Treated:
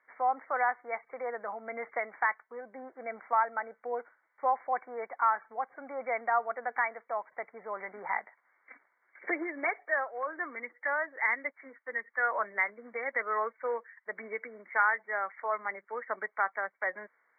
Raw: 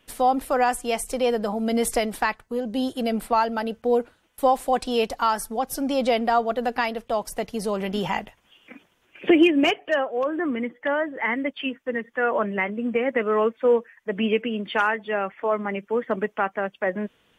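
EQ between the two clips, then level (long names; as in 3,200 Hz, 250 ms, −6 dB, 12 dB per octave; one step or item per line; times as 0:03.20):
high-pass filter 1,100 Hz 12 dB per octave
linear-phase brick-wall low-pass 2,300 Hz
high-frequency loss of the air 190 metres
0.0 dB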